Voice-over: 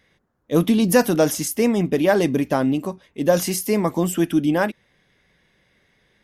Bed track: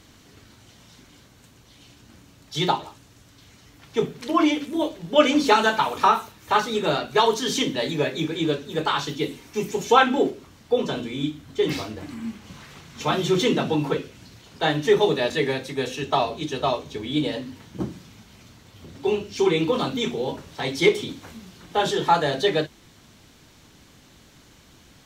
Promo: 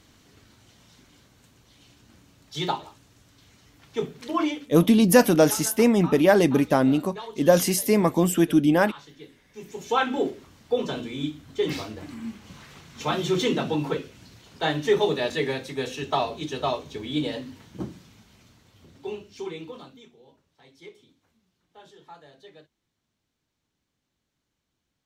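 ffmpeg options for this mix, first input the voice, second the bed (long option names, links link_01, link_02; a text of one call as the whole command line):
ffmpeg -i stem1.wav -i stem2.wav -filter_complex "[0:a]adelay=4200,volume=0dB[link_01];[1:a]volume=11.5dB,afade=type=out:start_time=4.41:duration=0.35:silence=0.188365,afade=type=in:start_time=9.5:duration=0.84:silence=0.149624,afade=type=out:start_time=17.35:duration=2.74:silence=0.0562341[link_02];[link_01][link_02]amix=inputs=2:normalize=0" out.wav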